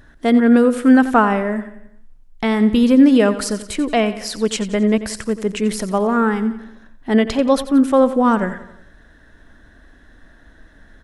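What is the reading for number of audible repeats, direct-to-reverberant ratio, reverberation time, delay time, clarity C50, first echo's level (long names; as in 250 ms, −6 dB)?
4, no reverb audible, no reverb audible, 89 ms, no reverb audible, −14.0 dB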